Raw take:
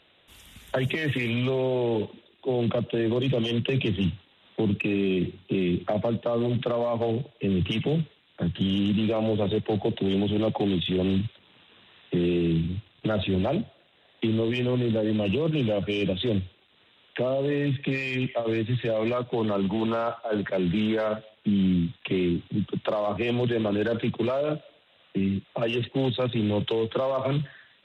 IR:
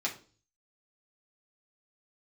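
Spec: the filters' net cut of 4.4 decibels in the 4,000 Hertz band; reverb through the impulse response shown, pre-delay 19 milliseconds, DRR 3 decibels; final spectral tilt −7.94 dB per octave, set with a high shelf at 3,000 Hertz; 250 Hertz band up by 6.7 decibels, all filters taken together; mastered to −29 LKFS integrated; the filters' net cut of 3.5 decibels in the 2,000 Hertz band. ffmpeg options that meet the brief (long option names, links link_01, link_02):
-filter_complex "[0:a]equalizer=frequency=250:width_type=o:gain=9,equalizer=frequency=2000:width_type=o:gain=-4,highshelf=frequency=3000:gain=5,equalizer=frequency=4000:width_type=o:gain=-8,asplit=2[link_01][link_02];[1:a]atrim=start_sample=2205,adelay=19[link_03];[link_02][link_03]afir=irnorm=-1:irlink=0,volume=-8.5dB[link_04];[link_01][link_04]amix=inputs=2:normalize=0,volume=-8dB"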